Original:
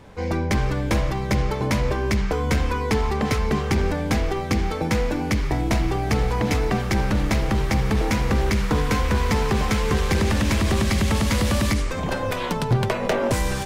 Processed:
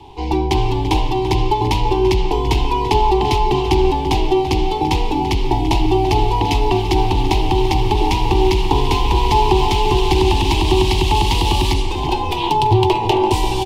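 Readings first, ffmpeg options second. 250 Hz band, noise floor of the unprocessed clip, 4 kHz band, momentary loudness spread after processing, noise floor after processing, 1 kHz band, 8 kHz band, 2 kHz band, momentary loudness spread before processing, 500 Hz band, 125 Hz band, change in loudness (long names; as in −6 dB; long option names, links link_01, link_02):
+4.0 dB, −27 dBFS, +9.0 dB, 4 LU, −21 dBFS, +11.0 dB, +0.5 dB, 0.0 dB, 3 LU, +7.0 dB, +3.5 dB, +5.5 dB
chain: -filter_complex "[0:a]firequalizer=gain_entry='entry(140,0);entry(210,-13);entry(380,10);entry(550,-19);entry(870,13);entry(1400,-24);entry(2800,7);entry(6400,-5)':delay=0.05:min_phase=1,afreqshift=-16,asplit=2[link_01][link_02];[link_02]adelay=338.2,volume=-10dB,highshelf=frequency=4000:gain=-7.61[link_03];[link_01][link_03]amix=inputs=2:normalize=0,volume=5dB"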